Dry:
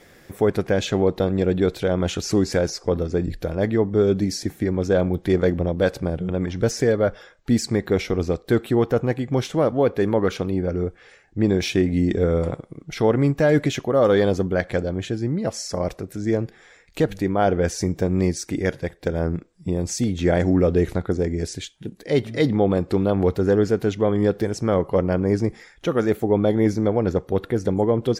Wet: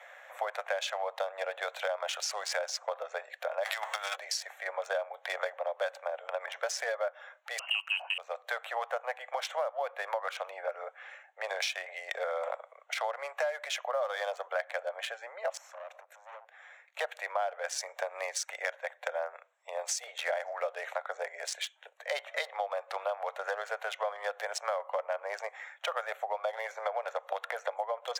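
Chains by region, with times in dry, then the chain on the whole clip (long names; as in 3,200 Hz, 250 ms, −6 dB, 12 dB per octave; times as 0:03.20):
0:03.63–0:04.15: spectral envelope flattened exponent 0.6 + high-pass filter 1,300 Hz 6 dB per octave + compressor whose output falls as the input rises −31 dBFS, ratio −0.5
0:07.59–0:08.18: one scale factor per block 7 bits + voice inversion scrambler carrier 3,000 Hz
0:15.57–0:16.99: tube saturation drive 27 dB, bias 0.75 + downward compressor 8 to 1, threshold −39 dBFS
0:26.53–0:27.76: high-pass filter 51 Hz + multiband upward and downward compressor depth 100%
whole clip: adaptive Wiener filter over 9 samples; Butterworth high-pass 570 Hz 72 dB per octave; downward compressor, threshold −35 dBFS; level +4.5 dB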